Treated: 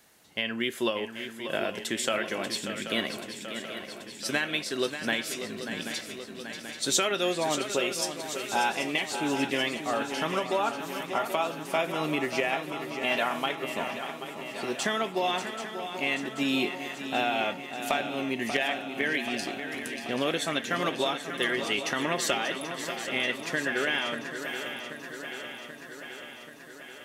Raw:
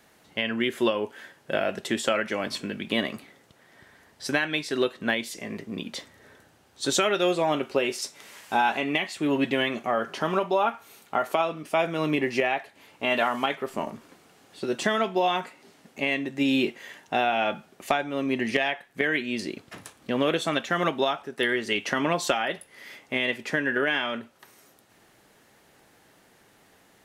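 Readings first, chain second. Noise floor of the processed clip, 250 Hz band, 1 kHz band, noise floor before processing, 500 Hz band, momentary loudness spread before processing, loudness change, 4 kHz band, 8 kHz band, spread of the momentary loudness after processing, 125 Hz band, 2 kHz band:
-45 dBFS, -4.0 dB, -3.0 dB, -60 dBFS, -3.5 dB, 12 LU, -3.0 dB, +0.5 dB, +3.5 dB, 10 LU, -4.0 dB, -1.5 dB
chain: treble shelf 3.5 kHz +9 dB; on a send: shuffle delay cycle 783 ms, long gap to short 3:1, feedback 65%, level -9.5 dB; on the sum: trim -5 dB

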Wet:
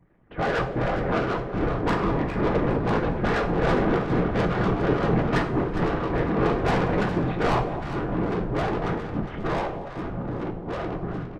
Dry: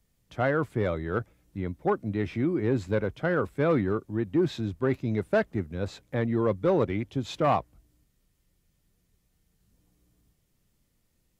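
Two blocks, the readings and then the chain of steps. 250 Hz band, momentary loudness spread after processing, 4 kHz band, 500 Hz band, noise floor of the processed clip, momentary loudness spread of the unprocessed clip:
+4.5 dB, 8 LU, +6.5 dB, +3.0 dB, -36 dBFS, 8 LU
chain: cycle switcher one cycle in 2, inverted; spectral gate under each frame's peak -30 dB strong; low-pass 2 kHz 24 dB/octave; comb 4.1 ms, depth 94%; in parallel at -0.5 dB: compression 4:1, threshold -37 dBFS, peak gain reduction 17.5 dB; on the sum: whisper effect; saturation -24.5 dBFS, distortion -7 dB; ever faster or slower copies 641 ms, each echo -3 st, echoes 2; on a send: echo whose repeats swap between lows and highs 204 ms, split 860 Hz, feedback 65%, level -7 dB; on the sum: two-slope reverb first 0.35 s, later 2 s, from -17 dB, DRR 4.5 dB; trim +2 dB

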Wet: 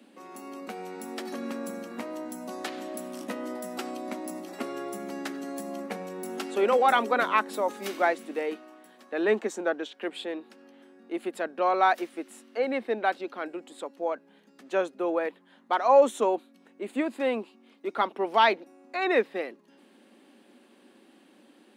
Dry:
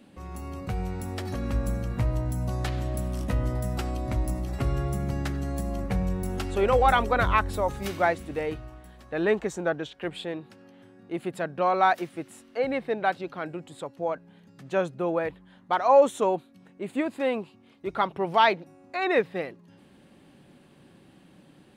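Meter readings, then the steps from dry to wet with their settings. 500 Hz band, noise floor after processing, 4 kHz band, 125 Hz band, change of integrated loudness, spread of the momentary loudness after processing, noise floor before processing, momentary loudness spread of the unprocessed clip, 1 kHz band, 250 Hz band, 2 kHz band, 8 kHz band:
-0.5 dB, -59 dBFS, 0.0 dB, under -20 dB, -1.5 dB, 16 LU, -56 dBFS, 15 LU, -1.0 dB, -2.0 dB, -0.5 dB, 0.0 dB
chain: Chebyshev high-pass 220 Hz, order 5

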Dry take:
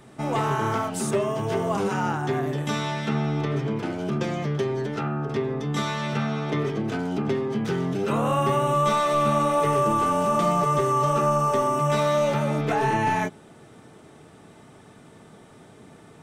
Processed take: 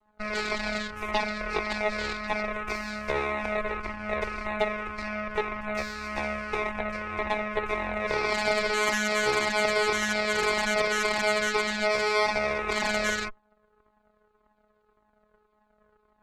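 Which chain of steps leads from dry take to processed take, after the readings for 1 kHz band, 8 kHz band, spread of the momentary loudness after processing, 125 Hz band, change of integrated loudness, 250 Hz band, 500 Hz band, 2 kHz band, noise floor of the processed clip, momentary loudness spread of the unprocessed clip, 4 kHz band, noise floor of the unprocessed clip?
-6.5 dB, +0.5 dB, 8 LU, -17.5 dB, -3.5 dB, -9.5 dB, -4.0 dB, +7.0 dB, -69 dBFS, 6 LU, +4.0 dB, -50 dBFS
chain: frequency shift +280 Hz; vocoder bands 4, saw 212 Hz; Chebyshev shaper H 7 -16 dB, 8 -13 dB, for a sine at -10 dBFS; Shepard-style flanger falling 1.8 Hz; trim +1.5 dB

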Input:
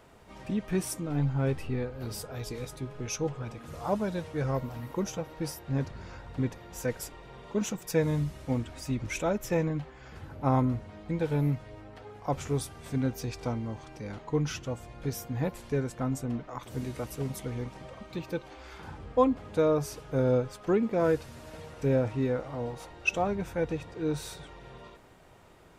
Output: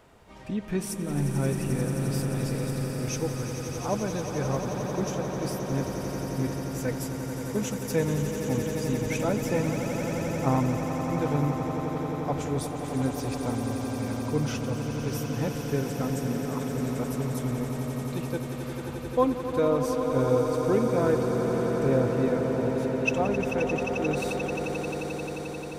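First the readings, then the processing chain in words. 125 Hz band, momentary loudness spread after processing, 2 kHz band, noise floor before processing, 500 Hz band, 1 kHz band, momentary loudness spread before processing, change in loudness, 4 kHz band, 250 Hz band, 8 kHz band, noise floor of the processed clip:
+3.0 dB, 7 LU, +4.0 dB, -51 dBFS, +4.0 dB, +4.0 dB, 14 LU, +3.5 dB, +4.0 dB, +4.5 dB, +4.0 dB, -35 dBFS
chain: on a send: echo with a slow build-up 88 ms, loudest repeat 8, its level -10 dB

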